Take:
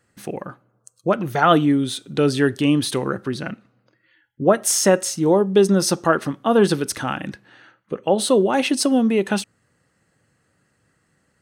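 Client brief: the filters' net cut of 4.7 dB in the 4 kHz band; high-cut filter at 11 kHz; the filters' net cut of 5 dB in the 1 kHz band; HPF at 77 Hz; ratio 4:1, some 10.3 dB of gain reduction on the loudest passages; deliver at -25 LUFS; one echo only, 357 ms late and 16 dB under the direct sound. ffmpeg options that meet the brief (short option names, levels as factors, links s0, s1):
-af "highpass=77,lowpass=11000,equalizer=f=1000:t=o:g=-7,equalizer=f=4000:t=o:g=-6,acompressor=threshold=0.0708:ratio=4,aecho=1:1:357:0.158,volume=1.33"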